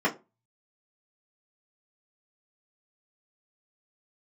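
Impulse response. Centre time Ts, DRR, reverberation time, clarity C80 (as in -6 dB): 12 ms, -6.5 dB, 0.25 s, 23.0 dB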